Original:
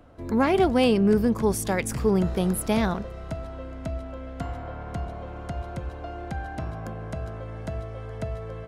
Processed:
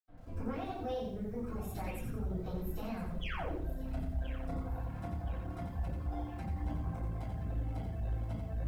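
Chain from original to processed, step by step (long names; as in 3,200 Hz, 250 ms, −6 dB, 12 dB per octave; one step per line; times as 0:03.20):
speech leveller within 3 dB
dynamic equaliser 130 Hz, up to −3 dB, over −34 dBFS, Q 0.72
mains-hum notches 50/100/150/200/250/300/350/400/450 Hz
formants moved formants +3 semitones
sound drawn into the spectrogram fall, 0:03.13–0:03.43, 280–3,500 Hz −24 dBFS
downward compressor 5 to 1, threshold −30 dBFS, peak gain reduction 10.5 dB
low-shelf EQ 170 Hz +9.5 dB
feedback echo with a high-pass in the loop 1,023 ms, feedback 46%, high-pass 450 Hz, level −12 dB
convolution reverb RT60 0.60 s, pre-delay 77 ms
soft clipping −33.5 dBFS, distortion −15 dB
reverb reduction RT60 1.2 s
feedback echo at a low word length 88 ms, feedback 35%, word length 12 bits, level −5 dB
level +5.5 dB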